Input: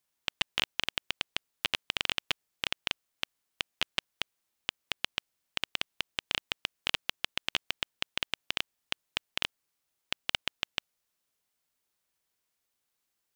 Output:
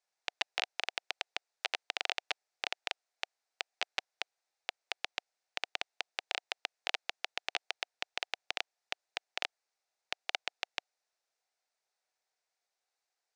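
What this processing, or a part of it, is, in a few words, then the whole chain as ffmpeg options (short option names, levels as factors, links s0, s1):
phone speaker on a table: -af "highpass=f=440:w=0.5412,highpass=f=440:w=1.3066,equalizer=f=740:t=q:w=4:g=7,equalizer=f=1100:t=q:w=4:g=-5,equalizer=f=3100:t=q:w=4:g=-8,equalizer=f=7200:t=q:w=4:g=-3,lowpass=f=7600:w=0.5412,lowpass=f=7600:w=1.3066,volume=0.891"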